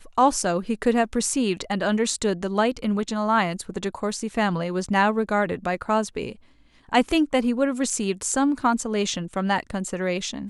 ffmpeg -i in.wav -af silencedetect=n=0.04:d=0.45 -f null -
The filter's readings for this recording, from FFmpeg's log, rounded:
silence_start: 6.32
silence_end: 6.93 | silence_duration: 0.61